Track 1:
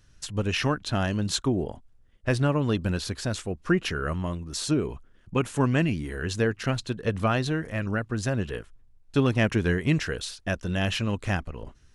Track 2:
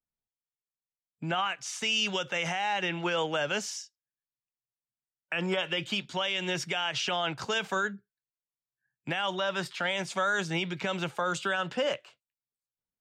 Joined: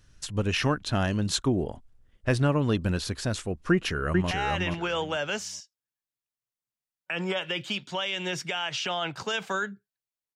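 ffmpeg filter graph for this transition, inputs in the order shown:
-filter_complex "[0:a]apad=whole_dur=10.35,atrim=end=10.35,atrim=end=4.312[a];[1:a]atrim=start=2.528:end=8.57[b];[a][b]acrossfade=d=0.004:c1=hsin:c2=hsin,asplit=2[c][d];[d]afade=t=in:st=3.71:d=0.01,afade=t=out:st=4.31:d=0.01,aecho=0:1:430|860|1290:0.707946|0.141589|0.0283178[e];[c][e]amix=inputs=2:normalize=0"

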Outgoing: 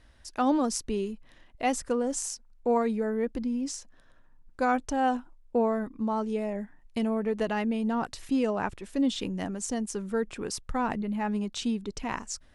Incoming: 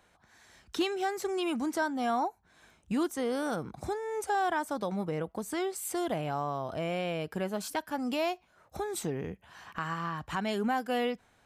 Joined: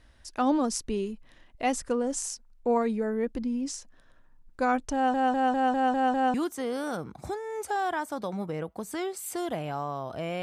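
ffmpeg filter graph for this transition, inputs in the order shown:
-filter_complex "[0:a]apad=whole_dur=10.42,atrim=end=10.42,asplit=7[a][b][c][d][e][f][g];[a]atrim=end=5.142[h];[b]atrim=start=4.938:end=5.142[i];[c]atrim=start=4.938:end=5.142[j];[d]atrim=start=4.938:end=5.142[k];[e]atrim=start=4.938:end=5.142[l];[f]atrim=start=4.938:end=5.142[m];[g]atrim=start=4.938:end=5.142[n];[1:a]atrim=start=2.928:end=7.01[o];[h][i]acrossfade=d=0.004:c1=hsin:c2=hsin[p];[p][j]acrossfade=d=0.004:c1=hsin:c2=hsin[q];[q][k]acrossfade=d=0.004:c1=hsin:c2=hsin[r];[r][l]acrossfade=d=0.004:c1=hsin:c2=hsin[s];[s][m]acrossfade=d=0.004:c1=hsin:c2=hsin[t];[t][n]acrossfade=d=0.004:c1=hsin:c2=hsin[u];[u][o]acrossfade=d=0.004:c1=hsin:c2=hsin"

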